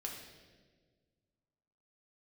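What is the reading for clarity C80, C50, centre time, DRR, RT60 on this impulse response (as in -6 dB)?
6.0 dB, 4.0 dB, 47 ms, -1.0 dB, 1.5 s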